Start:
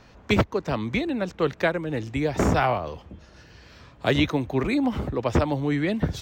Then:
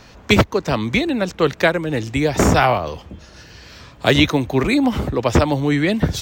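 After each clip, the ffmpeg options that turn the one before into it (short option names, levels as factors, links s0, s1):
-af "highshelf=f=3500:g=8,volume=2.11"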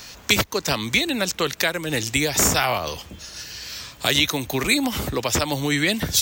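-af "alimiter=limit=0.299:level=0:latency=1:release=253,crystalizer=i=8:c=0,volume=0.596"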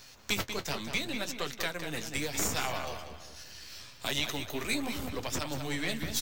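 -filter_complex "[0:a]aeval=exprs='if(lt(val(0),0),0.447*val(0),val(0))':c=same,asplit=2[s0][s1];[s1]adelay=190,lowpass=f=4400:p=1,volume=0.447,asplit=2[s2][s3];[s3]adelay=190,lowpass=f=4400:p=1,volume=0.39,asplit=2[s4][s5];[s5]adelay=190,lowpass=f=4400:p=1,volume=0.39,asplit=2[s6][s7];[s7]adelay=190,lowpass=f=4400:p=1,volume=0.39,asplit=2[s8][s9];[s9]adelay=190,lowpass=f=4400:p=1,volume=0.39[s10];[s0][s2][s4][s6][s8][s10]amix=inputs=6:normalize=0,flanger=delay=7.4:depth=6.3:regen=-44:speed=0.73:shape=sinusoidal,volume=0.473"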